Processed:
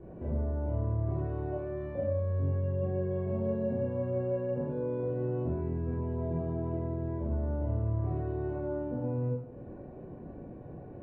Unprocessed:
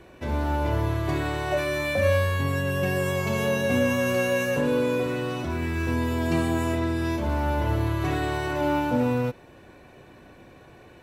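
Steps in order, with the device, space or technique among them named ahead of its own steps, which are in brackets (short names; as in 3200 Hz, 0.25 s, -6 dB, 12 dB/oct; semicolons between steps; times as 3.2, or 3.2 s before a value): television next door (compressor 3:1, threshold -38 dBFS, peak gain reduction 15 dB; LPF 510 Hz 12 dB/oct; reverb RT60 0.70 s, pre-delay 19 ms, DRR -5.5 dB)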